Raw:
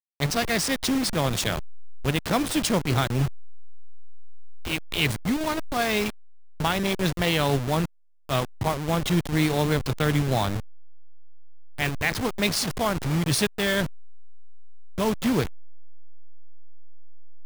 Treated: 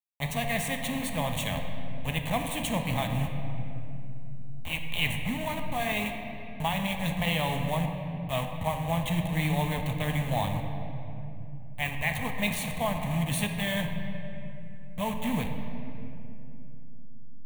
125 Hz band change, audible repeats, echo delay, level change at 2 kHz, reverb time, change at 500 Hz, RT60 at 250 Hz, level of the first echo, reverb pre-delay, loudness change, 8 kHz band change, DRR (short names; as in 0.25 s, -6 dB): -3.5 dB, none, none, -3.5 dB, 2.9 s, -6.5 dB, 4.3 s, none, 4 ms, -5.5 dB, -7.5 dB, 4.0 dB